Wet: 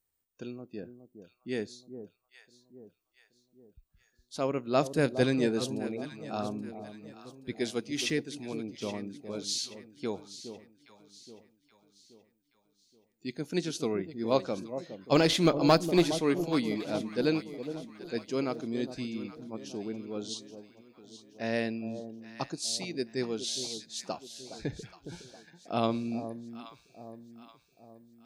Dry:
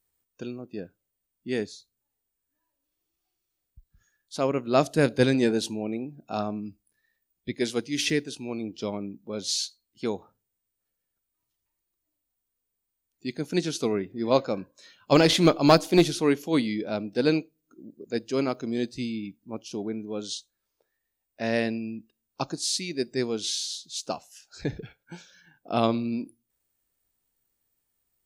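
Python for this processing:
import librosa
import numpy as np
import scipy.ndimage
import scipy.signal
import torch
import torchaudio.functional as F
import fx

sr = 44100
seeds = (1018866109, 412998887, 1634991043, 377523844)

y = fx.echo_alternate(x, sr, ms=413, hz=860.0, feedback_pct=65, wet_db=-10)
y = y * 10.0 ** (-5.0 / 20.0)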